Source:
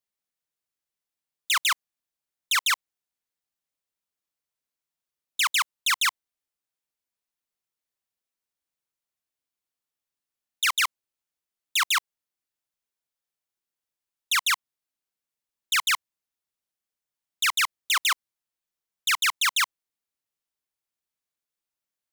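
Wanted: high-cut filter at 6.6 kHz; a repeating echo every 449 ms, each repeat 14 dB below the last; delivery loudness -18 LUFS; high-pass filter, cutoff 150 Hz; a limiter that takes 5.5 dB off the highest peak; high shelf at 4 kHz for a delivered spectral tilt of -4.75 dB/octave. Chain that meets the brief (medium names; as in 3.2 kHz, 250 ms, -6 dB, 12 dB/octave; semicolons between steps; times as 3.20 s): high-pass 150 Hz; low-pass 6.6 kHz; treble shelf 4 kHz -3.5 dB; peak limiter -22 dBFS; feedback delay 449 ms, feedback 20%, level -14 dB; trim +12.5 dB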